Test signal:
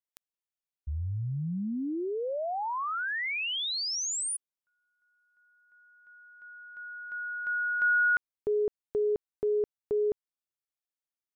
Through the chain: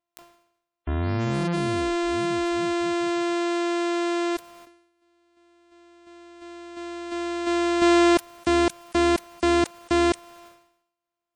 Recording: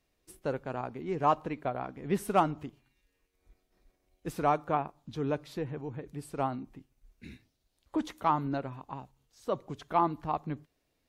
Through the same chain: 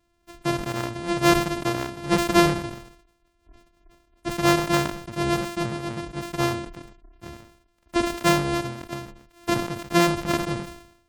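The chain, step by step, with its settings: sorted samples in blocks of 128 samples; spectral gate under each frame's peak -30 dB strong; decay stretcher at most 79 dB/s; trim +7.5 dB

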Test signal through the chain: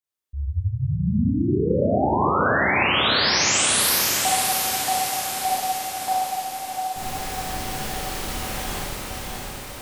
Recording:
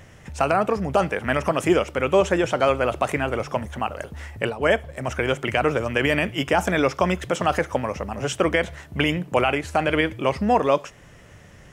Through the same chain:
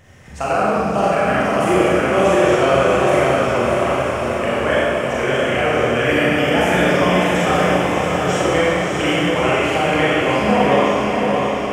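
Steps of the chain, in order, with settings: echo that smears into a reverb 647 ms, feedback 62%, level -3.5 dB; Schroeder reverb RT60 1.9 s, combs from 30 ms, DRR -7.5 dB; trim -4 dB

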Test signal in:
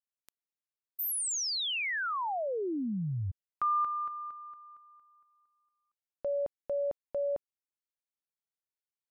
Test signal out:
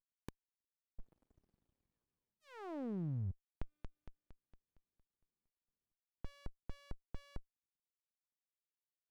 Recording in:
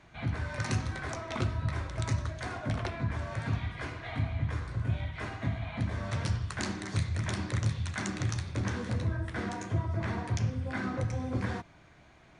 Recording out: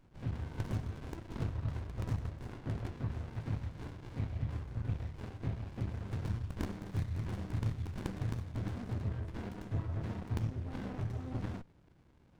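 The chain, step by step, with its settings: sliding maximum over 65 samples; trim -4.5 dB

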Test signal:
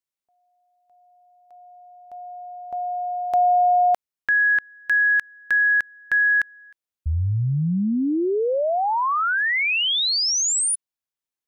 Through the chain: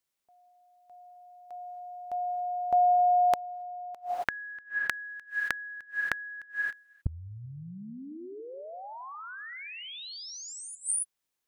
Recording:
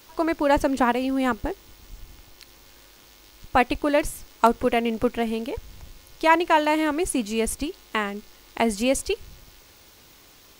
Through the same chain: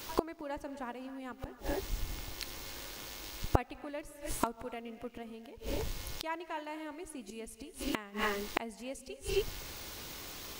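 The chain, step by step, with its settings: gated-style reverb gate 300 ms rising, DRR 11.5 dB; inverted gate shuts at -21 dBFS, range -27 dB; trim +6 dB

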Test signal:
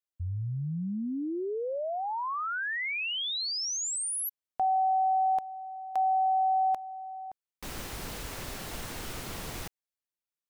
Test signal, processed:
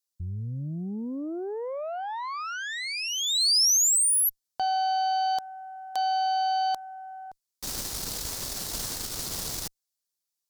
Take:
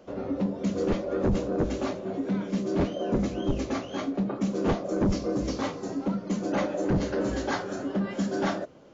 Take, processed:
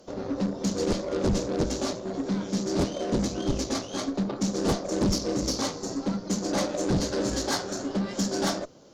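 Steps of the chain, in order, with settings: Chebyshev shaper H 2 -19 dB, 7 -40 dB, 8 -22 dB, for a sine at -19 dBFS; resonant high shelf 3.5 kHz +9.5 dB, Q 1.5

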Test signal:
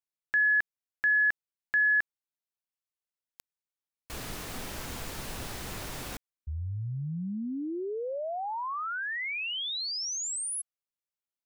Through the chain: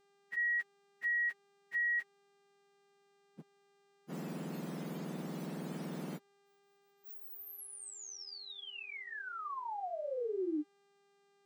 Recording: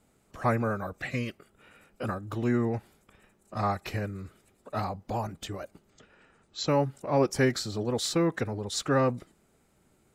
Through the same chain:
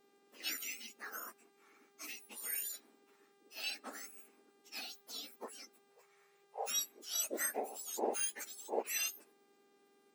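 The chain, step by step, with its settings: spectrum inverted on a logarithmic axis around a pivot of 1.8 kHz; mains buzz 400 Hz, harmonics 22, -64 dBFS -6 dB/octave; trim -7.5 dB

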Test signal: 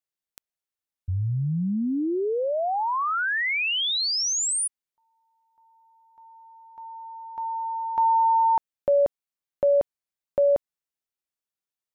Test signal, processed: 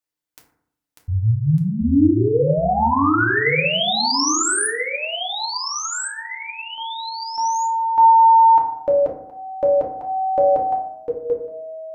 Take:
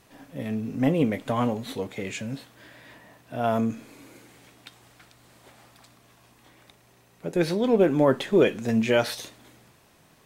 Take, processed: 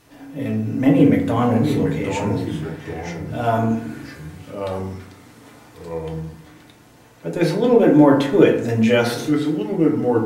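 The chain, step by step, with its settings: ever faster or slower copies 523 ms, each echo -3 st, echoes 2, each echo -6 dB; FDN reverb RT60 0.7 s, low-frequency decay 1.25×, high-frequency decay 0.4×, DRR -1 dB; trim +2 dB

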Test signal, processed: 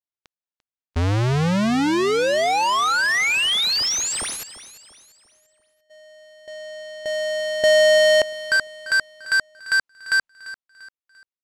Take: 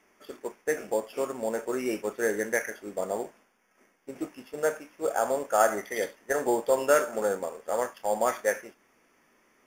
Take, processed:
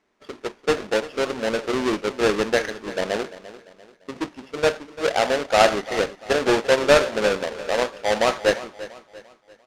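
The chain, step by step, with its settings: square wave that keeps the level; low-pass 6.3 kHz 12 dB/octave; gate -50 dBFS, range -10 dB; in parallel at -8 dB: crossover distortion -41 dBFS; on the sum: feedback delay 344 ms, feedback 40%, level -16 dB

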